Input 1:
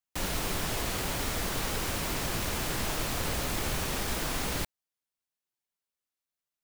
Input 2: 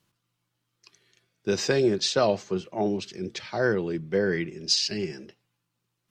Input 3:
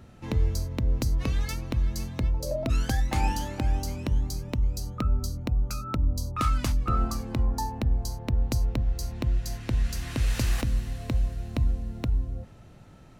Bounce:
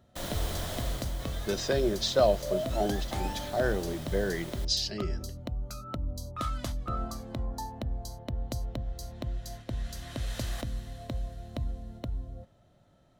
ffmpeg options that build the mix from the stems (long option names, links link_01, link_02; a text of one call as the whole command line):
ffmpeg -i stem1.wav -i stem2.wav -i stem3.wav -filter_complex "[0:a]volume=-6dB,afade=type=out:start_time=0.77:duration=0.35:silence=0.398107[link_01];[1:a]highpass=frequency=53:poles=1,deesser=0.3,volume=-6dB[link_02];[2:a]lowshelf=frequency=72:gain=-4.5,volume=-6.5dB[link_03];[link_01][link_02][link_03]amix=inputs=3:normalize=0,agate=range=-6dB:threshold=-45dB:ratio=16:detection=peak,superequalizer=8b=2.24:12b=0.631:13b=1.58" out.wav